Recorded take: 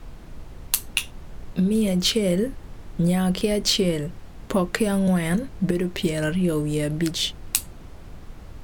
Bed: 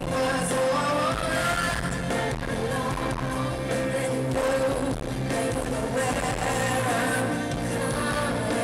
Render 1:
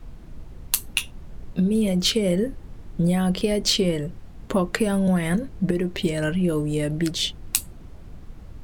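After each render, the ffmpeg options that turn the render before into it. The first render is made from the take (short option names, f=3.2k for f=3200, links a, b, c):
-af "afftdn=nr=6:nf=-42"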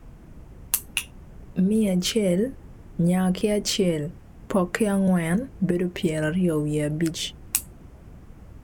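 -af "highpass=f=57:p=1,equalizer=f=4k:t=o:w=0.69:g=-8.5"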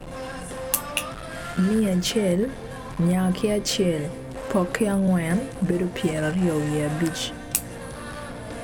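-filter_complex "[1:a]volume=-9.5dB[a];[0:a][a]amix=inputs=2:normalize=0"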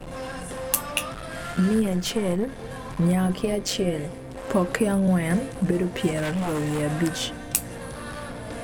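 -filter_complex "[0:a]asettb=1/sr,asplit=3[a][b][c];[a]atrim=end=1.824[d];[b]atrim=start=1.82:end=2.59,asetpts=PTS-STARTPTS,afade=t=in:d=0.004:c=qsin,afade=t=out:st=0.766:d=0.004:c=qsin,aeval=exprs='(tanh(5.62*val(0)+0.6)-tanh(0.6))/5.62':c=same[e];[c]atrim=start=2.586[f];[d][e]acrossfade=d=0.004:c1=hsin:c2=qsin[g];[g][f]acrossfade=d=0.004:c1=qsin:c2=hsin,asettb=1/sr,asplit=3[h][i][j];[h]atrim=end=3.274[k];[i]atrim=start=3.27:end=4.48,asetpts=PTS-STARTPTS,afade=t=in:d=0.004:c=qsin,afade=t=out:st=1.206:d=0.004:c=qsin,tremolo=f=190:d=0.571[l];[j]atrim=start=4.476[m];[k][l]acrossfade=d=0.004:c1=hsin:c2=qsin[n];[n][m]acrossfade=d=0.004:c1=qsin:c2=hsin,asettb=1/sr,asplit=3[o][p][q];[o]atrim=end=6.184[r];[p]atrim=start=6.18:end=6.82,asetpts=PTS-STARTPTS,afade=t=in:d=0.004:c=qsin,afade=t=out:st=0.636:d=0.004:c=qsin,aeval=exprs='0.0891*(abs(mod(val(0)/0.0891+3,4)-2)-1)':c=same[s];[q]atrim=start=6.816[t];[r][s]acrossfade=d=0.004:c1=hsin:c2=qsin[u];[u][t]acrossfade=d=0.004:c1=qsin:c2=hsin"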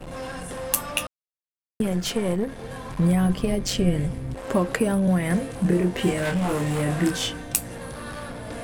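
-filter_complex "[0:a]asettb=1/sr,asplit=3[a][b][c];[a]atrim=end=2.864[d];[b]atrim=start=2.86:end=4.35,asetpts=PTS-STARTPTS,afade=t=in:d=0.004:c=qsin,afade=t=out:st=1.486:d=0.004:c=qsin,asubboost=boost=9:cutoff=210[e];[c]atrim=start=4.346[f];[d][e]acrossfade=d=0.004:c1=hsin:c2=qsin[g];[g][f]acrossfade=d=0.004:c1=qsin:c2=hsin,asettb=1/sr,asplit=3[h][i][j];[h]atrim=end=5.474[k];[i]atrim=start=5.47:end=7.42,asetpts=PTS-STARTPTS,afade=t=in:d=0.004:c=qsin,afade=t=out:st=1.946:d=0.004:c=qsin,asplit=2[l][m];[m]adelay=28,volume=-3.5dB[n];[l][n]amix=inputs=2:normalize=0,atrim=end_sample=85995[o];[j]atrim=start=7.416[p];[k][o]acrossfade=d=0.004:c1=hsin:c2=qsin[q];[q][p]acrossfade=d=0.004:c1=qsin:c2=hsin,asplit=3[r][s][t];[r]atrim=end=1.07,asetpts=PTS-STARTPTS,afade=t=out:st=1.066:d=0.004:c=hsin[u];[s]atrim=start=1.07:end=1.8,asetpts=PTS-STARTPTS,volume=0[v];[t]atrim=start=1.8,asetpts=PTS-STARTPTS,afade=t=in:d=0.004:c=hsin[w];[u][v][w]concat=n=3:v=0:a=1"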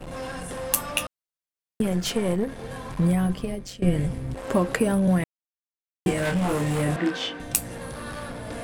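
-filter_complex "[0:a]asettb=1/sr,asplit=3[a][b][c];[a]atrim=end=6.964[d];[b]atrim=start=6.96:end=7.4,asetpts=PTS-STARTPTS,afade=t=in:d=0.004:c=qsin,afade=t=out:st=0.436:d=0.004:c=qsin,acrossover=split=210 4600:gain=0.0794 1 0.0891[e][f][g];[e][f][g]amix=inputs=3:normalize=0[h];[c]atrim=start=7.396[i];[d][h]acrossfade=d=0.004:c1=hsin:c2=qsin[j];[j][i]acrossfade=d=0.004:c1=qsin:c2=hsin,asplit=4[k][l][m][n];[k]atrim=end=3.82,asetpts=PTS-STARTPTS,afade=t=out:st=2.66:d=1.16:c=qsin:silence=0.0944061[o];[l]atrim=start=3.82:end=5.24,asetpts=PTS-STARTPTS,afade=t=in:d=0.004:c=hsin:silence=0.0944061,afade=t=out:st=1.416:d=0.004:c=hsin[p];[m]atrim=start=5.24:end=6.06,asetpts=PTS-STARTPTS,volume=0[q];[n]atrim=start=6.06,asetpts=PTS-STARTPTS,afade=t=in:d=0.004:c=hsin[r];[o][p][q][r]concat=n=4:v=0:a=1"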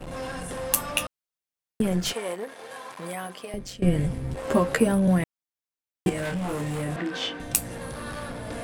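-filter_complex "[0:a]asettb=1/sr,asplit=3[a][b][c];[a]atrim=end=2.134[d];[b]atrim=start=2.13:end=3.54,asetpts=PTS-STARTPTS,afade=t=in:d=0.004:c=qsin,afade=t=out:st=1.406:d=0.004:c=qsin,highpass=570[e];[c]atrim=start=3.536[f];[d][e]acrossfade=d=0.004:c1=hsin:c2=qsin[g];[g][f]acrossfade=d=0.004:c1=qsin:c2=hsin,asettb=1/sr,asplit=3[h][i][j];[h]atrim=end=4.224[k];[i]atrim=start=4.22:end=4.86,asetpts=PTS-STARTPTS,afade=t=in:d=0.004:c=qsin,afade=t=out:st=0.636:d=0.004:c=qsin,asplit=2[l][m];[m]adelay=13,volume=-5.5dB[n];[l][n]amix=inputs=2:normalize=0,atrim=end_sample=28224[o];[j]atrim=start=4.856[p];[k][o]acrossfade=d=0.004:c1=hsin:c2=qsin[q];[q][p]acrossfade=d=0.004:c1=qsin:c2=hsin,asettb=1/sr,asplit=3[r][s][t];[r]atrim=end=6.094[u];[s]atrim=start=6.09:end=7.22,asetpts=PTS-STARTPTS,afade=t=in:d=0.004:c=qsin,afade=t=out:st=1.126:d=0.004:c=qsin,acompressor=threshold=-27dB:ratio=3:attack=3.2:release=140:knee=1:detection=peak[v];[t]atrim=start=7.216[w];[u][v]acrossfade=d=0.004:c1=hsin:c2=qsin[x];[x][w]acrossfade=d=0.004:c1=qsin:c2=hsin"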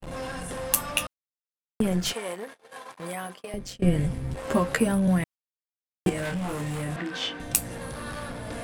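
-af "agate=range=-37dB:threshold=-39dB:ratio=16:detection=peak,adynamicequalizer=threshold=0.0126:dfrequency=430:dqfactor=0.84:tfrequency=430:tqfactor=0.84:attack=5:release=100:ratio=0.375:range=2.5:mode=cutabove:tftype=bell"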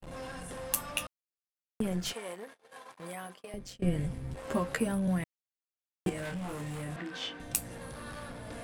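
-af "volume=-7.5dB"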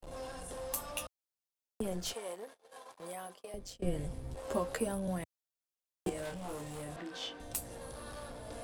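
-filter_complex "[0:a]acrossover=split=110|2700[a][b][c];[b]bandpass=f=590:t=q:w=0.83:csg=0[d];[c]asoftclip=type=tanh:threshold=-28dB[e];[a][d][e]amix=inputs=3:normalize=0"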